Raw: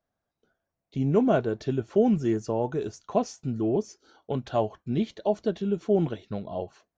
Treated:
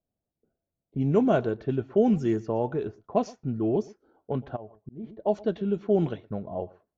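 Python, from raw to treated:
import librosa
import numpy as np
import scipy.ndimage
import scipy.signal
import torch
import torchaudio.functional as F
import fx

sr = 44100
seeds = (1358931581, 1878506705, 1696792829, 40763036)

y = x + 10.0 ** (-22.5 / 20.0) * np.pad(x, (int(118 * sr / 1000.0), 0))[:len(x)]
y = fx.auto_swell(y, sr, attack_ms=518.0, at=(4.55, 5.03), fade=0.02)
y = fx.env_lowpass(y, sr, base_hz=470.0, full_db=-18.5)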